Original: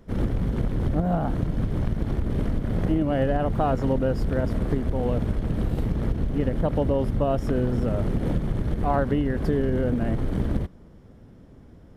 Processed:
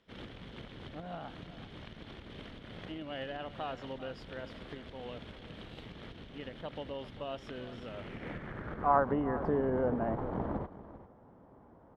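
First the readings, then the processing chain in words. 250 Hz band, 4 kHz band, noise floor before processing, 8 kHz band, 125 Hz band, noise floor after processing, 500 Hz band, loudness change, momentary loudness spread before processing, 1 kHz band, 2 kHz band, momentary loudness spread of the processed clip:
−14.0 dB, −2.0 dB, −49 dBFS, can't be measured, −19.5 dB, −58 dBFS, −10.0 dB, −12.0 dB, 4 LU, −5.0 dB, −6.0 dB, 17 LU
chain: spectral tilt −2.5 dB per octave
band-pass filter sweep 3,300 Hz → 930 Hz, 0:07.84–0:09.15
on a send: single-tap delay 393 ms −15 dB
on the sum: level +4.5 dB

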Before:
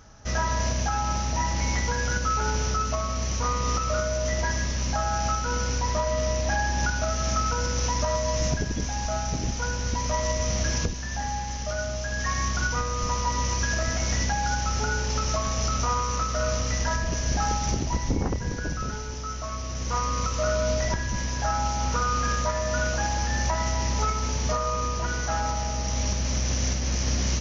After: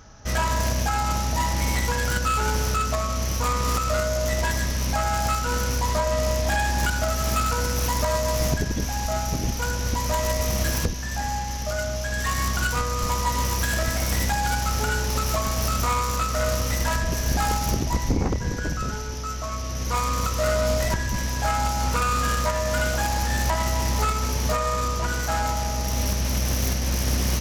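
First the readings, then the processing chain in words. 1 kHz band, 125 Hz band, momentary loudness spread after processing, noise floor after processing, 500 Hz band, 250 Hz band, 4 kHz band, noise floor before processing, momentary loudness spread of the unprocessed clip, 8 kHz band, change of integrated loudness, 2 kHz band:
+2.5 dB, +2.0 dB, 4 LU, −29 dBFS, +2.5 dB, +2.5 dB, +2.5 dB, −31 dBFS, 4 LU, can't be measured, +2.5 dB, +2.5 dB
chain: phase distortion by the signal itself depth 0.15 ms
level +3 dB

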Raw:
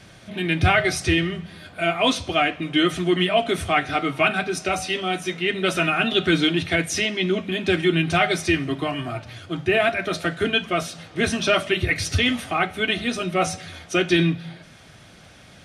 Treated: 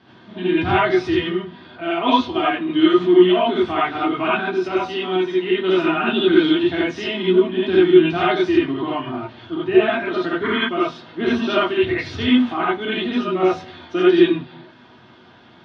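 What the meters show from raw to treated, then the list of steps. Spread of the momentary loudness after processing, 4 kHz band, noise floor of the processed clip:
11 LU, −1.5 dB, −48 dBFS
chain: loudspeaker in its box 110–3,800 Hz, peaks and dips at 150 Hz −4 dB, 250 Hz +7 dB, 350 Hz +9 dB, 560 Hz −6 dB, 960 Hz +9 dB, 2,300 Hz −9 dB
reverb whose tail is shaped and stops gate 110 ms rising, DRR −7 dB
sound drawn into the spectrogram noise, 0:10.43–0:10.69, 910–2,300 Hz −20 dBFS
level −6.5 dB

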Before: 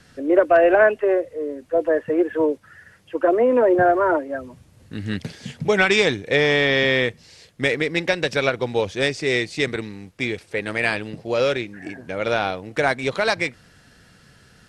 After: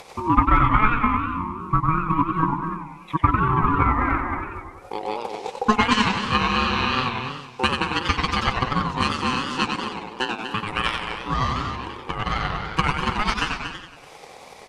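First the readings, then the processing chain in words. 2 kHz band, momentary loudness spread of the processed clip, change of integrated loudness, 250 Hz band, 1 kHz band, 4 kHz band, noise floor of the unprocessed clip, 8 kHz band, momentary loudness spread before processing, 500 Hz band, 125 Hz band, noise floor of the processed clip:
−4.0 dB, 12 LU, −2.5 dB, −0.5 dB, +5.5 dB, +0.5 dB, −53 dBFS, −1.0 dB, 14 LU, −14.0 dB, +6.0 dB, −44 dBFS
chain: slap from a distant wall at 40 metres, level −6 dB
ring modulation 640 Hz
transient designer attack +9 dB, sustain −4 dB
in parallel at −2 dB: upward compression, threshold −18 dBFS
on the sum: feedback echo with a swinging delay time 94 ms, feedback 54%, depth 199 cents, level −5 dB
level −9 dB

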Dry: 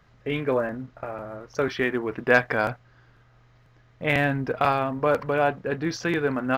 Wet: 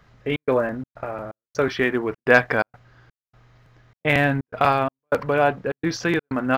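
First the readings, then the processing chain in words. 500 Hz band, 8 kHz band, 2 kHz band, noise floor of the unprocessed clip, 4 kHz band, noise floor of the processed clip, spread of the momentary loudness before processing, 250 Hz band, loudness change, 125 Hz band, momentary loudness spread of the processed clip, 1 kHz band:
+2.5 dB, can't be measured, +3.5 dB, −58 dBFS, +3.5 dB, below −85 dBFS, 14 LU, +3.0 dB, +3.0 dB, +2.5 dB, 13 LU, +3.0 dB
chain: gate pattern "xxx.xxx.xxx..xx" 126 BPM −60 dB
level +3.5 dB

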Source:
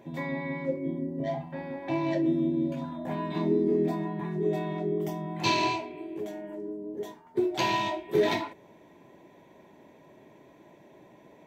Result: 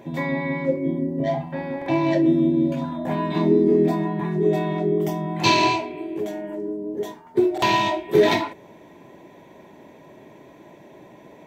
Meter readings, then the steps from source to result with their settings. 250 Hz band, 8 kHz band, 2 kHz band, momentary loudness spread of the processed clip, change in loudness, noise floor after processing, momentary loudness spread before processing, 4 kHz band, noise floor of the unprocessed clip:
+8.0 dB, +7.5 dB, +8.0 dB, 12 LU, +8.0 dB, −48 dBFS, 12 LU, +7.5 dB, −56 dBFS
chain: buffer that repeats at 0:01.77/0:07.53, samples 2,048, times 1
level +8 dB

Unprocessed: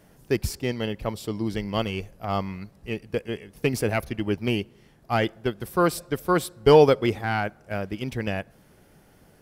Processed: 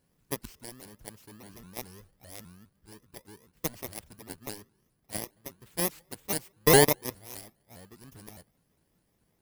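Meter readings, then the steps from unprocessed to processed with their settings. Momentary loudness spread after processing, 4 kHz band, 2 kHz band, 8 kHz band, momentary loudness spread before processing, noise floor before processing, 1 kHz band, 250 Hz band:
26 LU, −2.5 dB, −5.0 dB, +6.5 dB, 13 LU, −57 dBFS, −8.5 dB, −10.0 dB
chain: samples in bit-reversed order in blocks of 32 samples
harmonic generator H 7 −15 dB, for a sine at −4 dBFS
pitch modulation by a square or saw wave saw up 4.9 Hz, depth 250 cents
level −4 dB

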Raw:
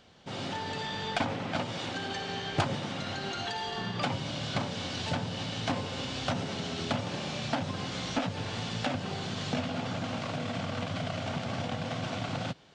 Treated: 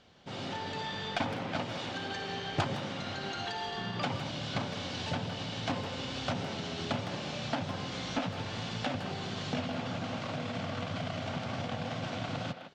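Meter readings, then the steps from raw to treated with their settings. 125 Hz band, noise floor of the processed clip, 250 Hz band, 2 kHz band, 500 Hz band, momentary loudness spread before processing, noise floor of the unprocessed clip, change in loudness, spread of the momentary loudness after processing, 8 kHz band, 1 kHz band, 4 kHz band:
−2.5 dB, −40 dBFS, −2.5 dB, −2.0 dB, −2.0 dB, 3 LU, −38 dBFS, −2.0 dB, 3 LU, −4.5 dB, −2.0 dB, −2.5 dB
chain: low-pass filter 7,300 Hz 12 dB per octave
far-end echo of a speakerphone 160 ms, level −7 dB
level −2.5 dB

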